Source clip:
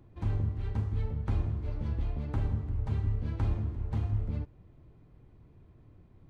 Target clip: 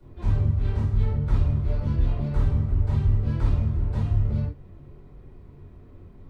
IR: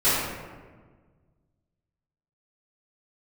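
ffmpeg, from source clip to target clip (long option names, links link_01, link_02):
-filter_complex "[0:a]acrossover=split=140|3000[link_01][link_02][link_03];[link_02]acompressor=threshold=-42dB:ratio=6[link_04];[link_01][link_04][link_03]amix=inputs=3:normalize=0[link_05];[1:a]atrim=start_sample=2205,atrim=end_sample=3969[link_06];[link_05][link_06]afir=irnorm=-1:irlink=0,volume=-5.5dB"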